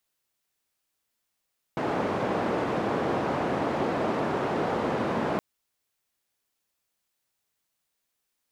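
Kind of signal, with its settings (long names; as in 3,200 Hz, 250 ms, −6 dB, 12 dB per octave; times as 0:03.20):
band-limited noise 150–710 Hz, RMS −27.5 dBFS 3.62 s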